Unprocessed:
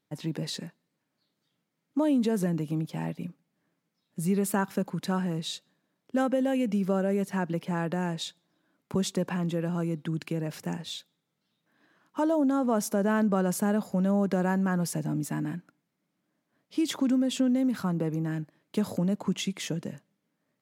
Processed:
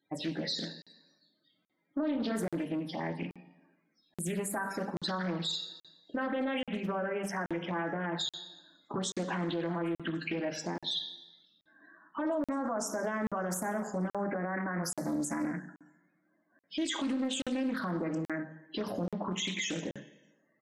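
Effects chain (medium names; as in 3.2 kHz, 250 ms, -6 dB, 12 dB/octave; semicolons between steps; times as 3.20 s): treble shelf 4 kHz +2 dB; delay 73 ms -22.5 dB; compression 2:1, threshold -33 dBFS, peak gain reduction 7.5 dB; loudest bins only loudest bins 32; high-pass 570 Hz 6 dB/octave; reverberation RT60 1.1 s, pre-delay 3 ms, DRR 1 dB; peak limiter -32.5 dBFS, peak gain reduction 9.5 dB; crackling interface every 0.83 s, samples 2048, zero, from 0.82 s; loudspeaker Doppler distortion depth 0.33 ms; trim +7.5 dB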